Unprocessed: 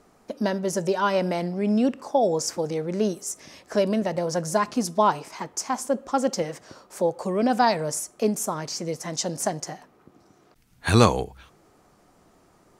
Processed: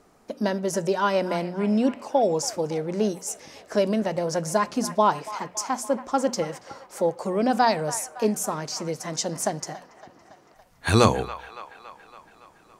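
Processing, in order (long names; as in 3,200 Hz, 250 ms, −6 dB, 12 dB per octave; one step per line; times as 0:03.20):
mains-hum notches 60/120/180/240 Hz
delay with a band-pass on its return 281 ms, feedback 63%, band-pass 1,500 Hz, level −13 dB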